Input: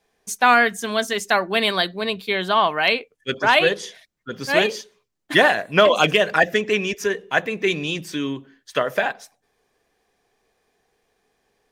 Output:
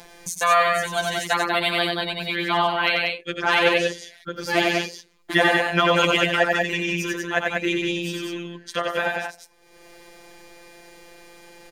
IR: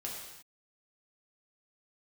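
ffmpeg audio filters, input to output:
-filter_complex "[0:a]asettb=1/sr,asplit=3[s0][s1][s2];[s0]atrim=end=8.244[s3];[s1]atrim=start=8.24:end=8.99,asetpts=PTS-STARTPTS,afade=t=in:d=0.004:c=qsin,afade=t=out:st=0.746:d=0.004:c=qsin,lowpass=12000[s4];[s2]atrim=start=8.986[s5];[s3][s4]acrossfade=d=0.004:c1=hsin:c2=qsin[s6];[s6][s5]acrossfade=d=0.004:c1=qsin:c2=hsin,afftfilt=real='hypot(re,im)*cos(PI*b)':imag='0':win_size=1024:overlap=0.75,aecho=1:1:90.38|189.5:0.708|0.631,acompressor=mode=upward:threshold=0.0562:ratio=2.5"

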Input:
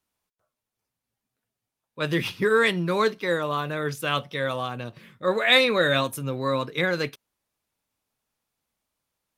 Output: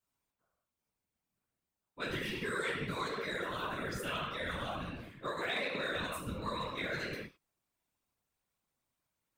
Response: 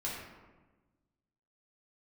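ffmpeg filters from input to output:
-filter_complex "[1:a]atrim=start_sample=2205,afade=t=out:st=0.27:d=0.01,atrim=end_sample=12348[s0];[0:a][s0]afir=irnorm=-1:irlink=0,aexciter=amount=1.2:drive=5.7:freq=7200,acrossover=split=1300|2800[s1][s2][s3];[s1]acompressor=threshold=0.0251:ratio=4[s4];[s2]acompressor=threshold=0.02:ratio=4[s5];[s3]acompressor=threshold=0.0126:ratio=4[s6];[s4][s5][s6]amix=inputs=3:normalize=0,afftfilt=real='hypot(re,im)*cos(2*PI*random(0))':imag='hypot(re,im)*sin(2*PI*random(1))':win_size=512:overlap=0.75,asplit=2[s7][s8];[s8]asoftclip=type=hard:threshold=0.0316,volume=0.355[s9];[s7][s9]amix=inputs=2:normalize=0,volume=0.631"

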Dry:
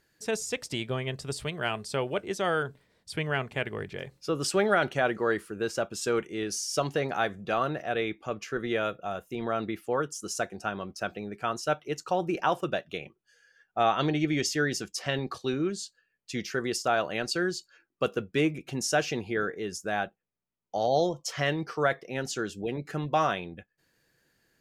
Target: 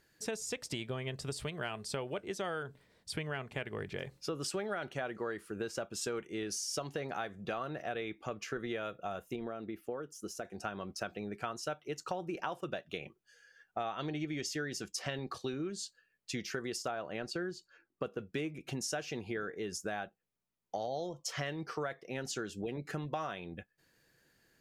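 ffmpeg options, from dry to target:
-filter_complex "[0:a]asettb=1/sr,asplit=3[s0][s1][s2];[s0]atrim=end=16.914[s3];[s1]atrim=start=16.91:end=18.19,asetpts=PTS-STARTPTS,afade=t=in:d=0.004:c=qsin,afade=t=out:st=1.276:d=0.004:c=qsin,highshelf=f=2600:g=-10.5[s4];[s2]atrim=start=18.186[s5];[s3][s4]acrossfade=d=0.004:c1=hsin:c2=qsin[s6];[s6][s5]acrossfade=d=0.004:c1=qsin:c2=hsin,acompressor=threshold=0.0178:ratio=6,asettb=1/sr,asplit=3[s7][s8][s9];[s7]atrim=end=9.364[s10];[s8]atrim=start=9.36:end=10.45,asetpts=PTS-STARTPTS,afade=t=in:d=0.004:c=qsin,afade=t=out:st=1.086:d=0.004:c=qsin,equalizer=f=125:t=o:w=1:g=-5,equalizer=f=1000:t=o:w=1:g=-6,equalizer=f=2000:t=o:w=1:g=-4,equalizer=f=4000:t=o:w=1:g=-6,equalizer=f=8000:t=o:w=1:g=-9[s11];[s9]atrim=start=10.446[s12];[s10][s11]acrossfade=d=0.004:c1=hsin:c2=qsin[s13];[s13][s12]acrossfade=d=0.004:c1=qsin:c2=hsin"

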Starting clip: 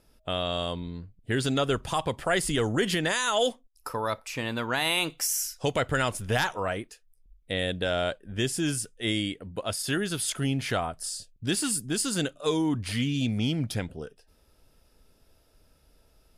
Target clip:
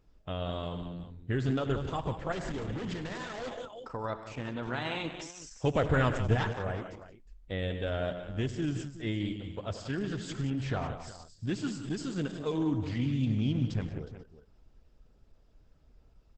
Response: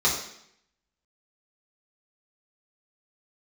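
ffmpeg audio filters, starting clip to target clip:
-filter_complex "[0:a]asplit=3[s0][s1][s2];[s0]afade=t=out:st=5.64:d=0.02[s3];[s1]acontrast=27,afade=t=in:st=5.64:d=0.02,afade=t=out:st=6.33:d=0.02[s4];[s2]afade=t=in:st=6.33:d=0.02[s5];[s3][s4][s5]amix=inputs=3:normalize=0,highshelf=f=3600:g=-12,asplit=2[s6][s7];[s7]aecho=0:1:76|100|129|151|179|362:0.133|0.188|0.1|0.15|0.299|0.188[s8];[s6][s8]amix=inputs=2:normalize=0,asettb=1/sr,asplit=3[s9][s10][s11];[s9]atrim=end=2.324[s12];[s10]atrim=start=2.32:end=3.91,asetpts=PTS-STARTPTS,afade=t=in:d=0.004:c=qsin,afade=t=out:st=1.586:d=0.004:c=qsin,asoftclip=type=hard:threshold=0.0355[s13];[s11]atrim=start=3.906[s14];[s12][s13]acrossfade=d=0.004:c1=hsin:c2=qsin[s15];[s15][s14]acrossfade=d=0.004:c1=qsin:c2=hsin,lowshelf=f=160:g=9,volume=0.501" -ar 48000 -c:a libopus -b:a 10k

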